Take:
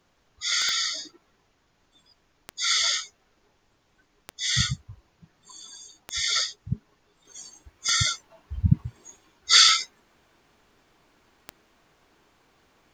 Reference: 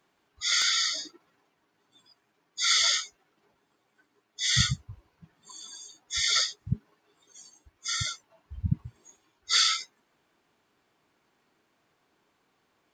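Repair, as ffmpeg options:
-af "adeclick=t=4,agate=range=-21dB:threshold=-59dB,asetnsamples=n=441:p=0,asendcmd='7.25 volume volume -7.5dB',volume=0dB"

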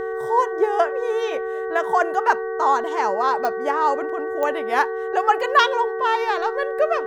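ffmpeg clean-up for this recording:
-af "adeclick=t=4,bandreject=f=377.7:t=h:w=4,bandreject=f=755.4:t=h:w=4,bandreject=f=1.1331k:t=h:w=4,bandreject=f=1.5108k:t=h:w=4,bandreject=f=1.8885k:t=h:w=4,bandreject=f=450:w=30"

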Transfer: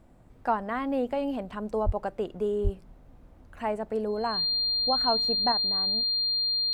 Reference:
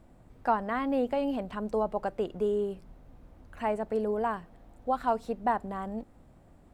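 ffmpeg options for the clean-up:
-filter_complex "[0:a]bandreject=f=4.2k:w=30,asplit=3[a][b][c];[a]afade=t=out:st=1.85:d=0.02[d];[b]highpass=f=140:w=0.5412,highpass=f=140:w=1.3066,afade=t=in:st=1.85:d=0.02,afade=t=out:st=1.97:d=0.02[e];[c]afade=t=in:st=1.97:d=0.02[f];[d][e][f]amix=inputs=3:normalize=0,asplit=3[g][h][i];[g]afade=t=out:st=2.63:d=0.02[j];[h]highpass=f=140:w=0.5412,highpass=f=140:w=1.3066,afade=t=in:st=2.63:d=0.02,afade=t=out:st=2.75:d=0.02[k];[i]afade=t=in:st=2.75:d=0.02[l];[j][k][l]amix=inputs=3:normalize=0,asetnsamples=n=441:p=0,asendcmd='5.52 volume volume 6dB',volume=0dB"

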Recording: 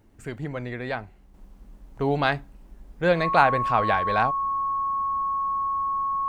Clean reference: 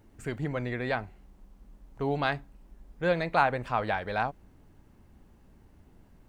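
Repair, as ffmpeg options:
-af "bandreject=f=1.1k:w=30,asetnsamples=n=441:p=0,asendcmd='1.34 volume volume -5.5dB',volume=0dB"

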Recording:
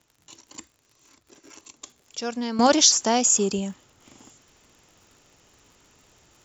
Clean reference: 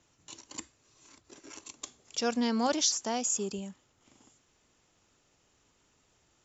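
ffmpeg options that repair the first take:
-af "adeclick=t=4,asetnsamples=n=441:p=0,asendcmd='2.59 volume volume -11dB',volume=0dB"

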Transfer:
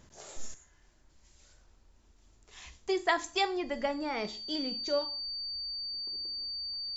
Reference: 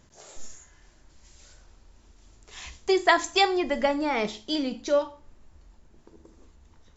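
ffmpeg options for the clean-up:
-af "bandreject=f=4.6k:w=30,asetnsamples=n=441:p=0,asendcmd='0.54 volume volume 8dB',volume=0dB"

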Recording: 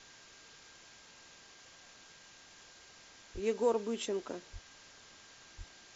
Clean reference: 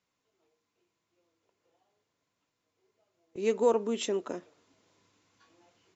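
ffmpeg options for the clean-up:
-filter_complex "[0:a]bandreject=f=1.6k:w=30,asplit=3[a][b][c];[a]afade=t=out:st=3.33:d=0.02[d];[b]highpass=f=140:w=0.5412,highpass=f=140:w=1.3066,afade=t=in:st=3.33:d=0.02,afade=t=out:st=3.45:d=0.02[e];[c]afade=t=in:st=3.45:d=0.02[f];[d][e][f]amix=inputs=3:normalize=0,asplit=3[g][h][i];[g]afade=t=out:st=4.52:d=0.02[j];[h]highpass=f=140:w=0.5412,highpass=f=140:w=1.3066,afade=t=in:st=4.52:d=0.02,afade=t=out:st=4.64:d=0.02[k];[i]afade=t=in:st=4.64:d=0.02[l];[j][k][l]amix=inputs=3:normalize=0,asplit=3[m][n][o];[m]afade=t=out:st=5.57:d=0.02[p];[n]highpass=f=140:w=0.5412,highpass=f=140:w=1.3066,afade=t=in:st=5.57:d=0.02,afade=t=out:st=5.69:d=0.02[q];[o]afade=t=in:st=5.69:d=0.02[r];[p][q][r]amix=inputs=3:normalize=0,afwtdn=0.0022,asetnsamples=n=441:p=0,asendcmd='2.93 volume volume 5dB',volume=0dB"

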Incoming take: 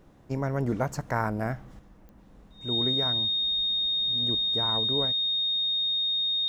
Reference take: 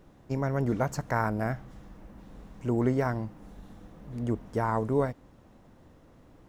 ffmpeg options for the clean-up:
-af "adeclick=t=4,bandreject=f=3.7k:w=30,asetnsamples=n=441:p=0,asendcmd='1.79 volume volume 5.5dB',volume=0dB"

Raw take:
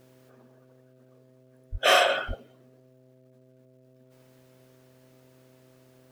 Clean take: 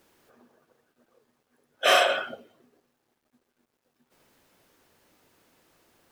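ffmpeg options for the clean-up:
-filter_complex "[0:a]bandreject=f=128.7:t=h:w=4,bandreject=f=257.4:t=h:w=4,bandreject=f=386.1:t=h:w=4,bandreject=f=514.8:t=h:w=4,bandreject=f=643.5:t=h:w=4,asplit=3[a][b][c];[a]afade=t=out:st=1.71:d=0.02[d];[b]highpass=f=140:w=0.5412,highpass=f=140:w=1.3066,afade=t=in:st=1.71:d=0.02,afade=t=out:st=1.83:d=0.02[e];[c]afade=t=in:st=1.83:d=0.02[f];[d][e][f]amix=inputs=3:normalize=0,asplit=3[g][h][i];[g]afade=t=out:st=2.27:d=0.02[j];[h]highpass=f=140:w=0.5412,highpass=f=140:w=1.3066,afade=t=in:st=2.27:d=0.02,afade=t=out:st=2.39:d=0.02[k];[i]afade=t=in:st=2.39:d=0.02[l];[j][k][l]amix=inputs=3:normalize=0"

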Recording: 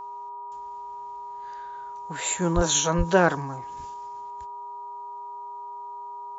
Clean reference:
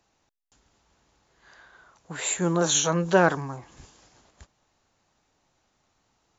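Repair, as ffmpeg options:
-filter_complex "[0:a]bandreject=f=408.2:t=h:w=4,bandreject=f=816.4:t=h:w=4,bandreject=f=1.2246k:t=h:w=4,bandreject=f=960:w=30,asplit=3[a][b][c];[a]afade=t=out:st=2.55:d=0.02[d];[b]highpass=f=140:w=0.5412,highpass=f=140:w=1.3066,afade=t=in:st=2.55:d=0.02,afade=t=out:st=2.67:d=0.02[e];[c]afade=t=in:st=2.67:d=0.02[f];[d][e][f]amix=inputs=3:normalize=0,asplit=3[g][h][i];[g]afade=t=out:st=2.97:d=0.02[j];[h]highpass=f=140:w=0.5412,highpass=f=140:w=1.3066,afade=t=in:st=2.97:d=0.02,afade=t=out:st=3.09:d=0.02[k];[i]afade=t=in:st=3.09:d=0.02[l];[j][k][l]amix=inputs=3:normalize=0,asetnsamples=n=441:p=0,asendcmd='3.94 volume volume 4.5dB',volume=0dB"

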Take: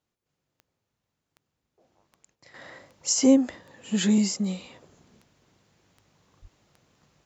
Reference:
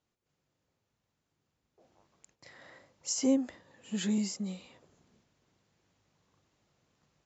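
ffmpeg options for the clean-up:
-filter_complex "[0:a]adeclick=t=4,asplit=3[a][b][c];[a]afade=t=out:st=6.41:d=0.02[d];[b]highpass=f=140:w=0.5412,highpass=f=140:w=1.3066,afade=t=in:st=6.41:d=0.02,afade=t=out:st=6.53:d=0.02[e];[c]afade=t=in:st=6.53:d=0.02[f];[d][e][f]amix=inputs=3:normalize=0,asetnsamples=n=441:p=0,asendcmd='2.54 volume volume -9dB',volume=0dB"

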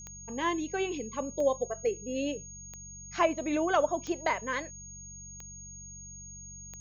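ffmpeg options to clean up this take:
-af "adeclick=t=4,bandreject=f=47.1:t=h:w=4,bandreject=f=94.2:t=h:w=4,bandreject=f=141.3:t=h:w=4,bandreject=f=188.4:t=h:w=4,bandreject=f=6.6k:w=30"

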